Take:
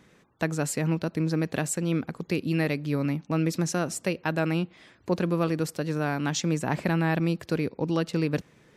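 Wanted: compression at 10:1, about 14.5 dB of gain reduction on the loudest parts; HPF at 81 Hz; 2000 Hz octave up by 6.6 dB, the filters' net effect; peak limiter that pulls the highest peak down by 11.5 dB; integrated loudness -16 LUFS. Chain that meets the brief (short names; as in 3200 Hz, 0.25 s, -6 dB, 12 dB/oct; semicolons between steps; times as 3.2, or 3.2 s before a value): HPF 81 Hz; bell 2000 Hz +8.5 dB; compressor 10:1, threshold -34 dBFS; gain +25 dB; limiter -4 dBFS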